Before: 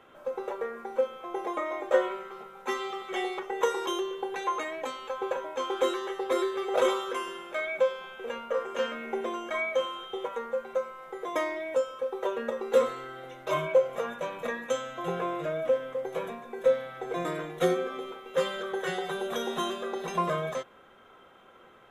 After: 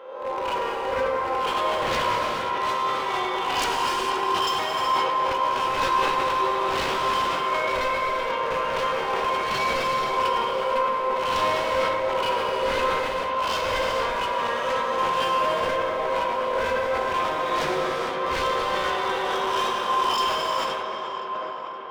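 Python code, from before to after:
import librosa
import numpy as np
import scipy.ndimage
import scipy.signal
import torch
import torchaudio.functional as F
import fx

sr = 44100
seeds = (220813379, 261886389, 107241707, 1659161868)

y = fx.spec_swells(x, sr, rise_s=0.91)
y = fx.highpass(y, sr, hz=670.0, slope=6)
y = fx.peak_eq(y, sr, hz=990.0, db=14.5, octaves=0.29)
y = fx.rider(y, sr, range_db=3, speed_s=2.0)
y = scipy.signal.savgol_filter(y, 15, 4, mode='constant')
y = 10.0 ** (-24.0 / 20.0) * (np.abs((y / 10.0 ** (-24.0 / 20.0) + 3.0) % 4.0 - 2.0) - 1.0)
y = fx.echo_tape(y, sr, ms=519, feedback_pct=86, wet_db=-4.5, lp_hz=2300.0, drive_db=24.0, wow_cents=29)
y = fx.rev_gated(y, sr, seeds[0], gate_ms=490, shape='flat', drr_db=-0.5)
y = fx.sustainer(y, sr, db_per_s=23.0)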